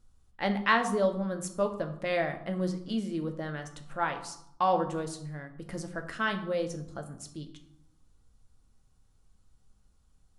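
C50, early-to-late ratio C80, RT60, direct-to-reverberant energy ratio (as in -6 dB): 11.0 dB, 13.5 dB, 0.75 s, 5.5 dB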